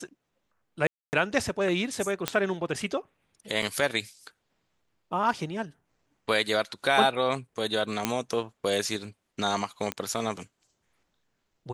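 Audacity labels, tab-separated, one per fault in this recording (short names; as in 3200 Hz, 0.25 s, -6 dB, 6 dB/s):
0.870000	1.130000	gap 0.259 s
2.280000	2.280000	pop -8 dBFS
3.620000	3.620000	gap 4.2 ms
8.050000	8.050000	pop -8 dBFS
9.920000	9.920000	pop -14 dBFS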